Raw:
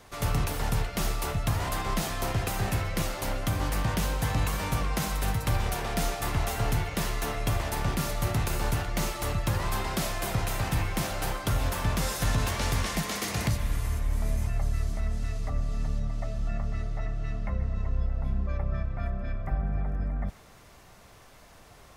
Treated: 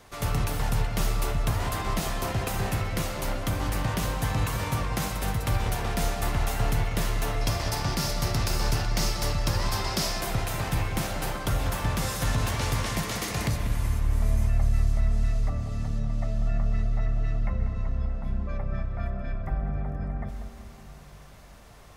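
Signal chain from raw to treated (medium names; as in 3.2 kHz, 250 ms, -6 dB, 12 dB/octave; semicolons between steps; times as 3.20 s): 7.41–10.21 s: peaking EQ 5.1 kHz +11.5 dB 0.57 oct; filtered feedback delay 191 ms, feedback 60%, low-pass 2 kHz, level -9 dB; reverberation RT60 5.2 s, pre-delay 77 ms, DRR 14.5 dB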